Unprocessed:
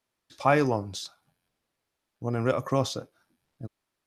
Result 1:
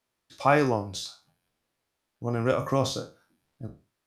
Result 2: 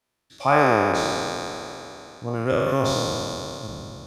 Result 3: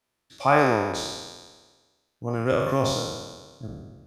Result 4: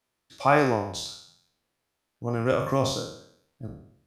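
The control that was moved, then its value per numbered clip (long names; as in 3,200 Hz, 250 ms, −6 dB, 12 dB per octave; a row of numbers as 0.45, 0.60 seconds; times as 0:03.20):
peak hold with a decay on every bin, RT60: 0.31, 3.2, 1.39, 0.66 seconds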